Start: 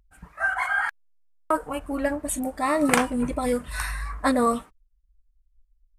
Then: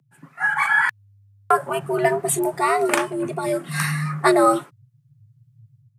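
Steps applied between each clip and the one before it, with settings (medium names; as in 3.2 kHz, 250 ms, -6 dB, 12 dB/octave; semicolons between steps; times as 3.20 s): level rider gain up to 9 dB; frequency shift +100 Hz; trim -1.5 dB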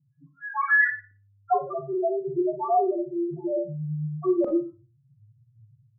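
loudest bins only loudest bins 1; LFO low-pass saw up 0.9 Hz 280–3500 Hz; Schroeder reverb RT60 0.33 s, combs from 29 ms, DRR 5 dB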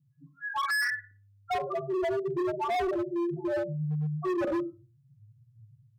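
overload inside the chain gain 26.5 dB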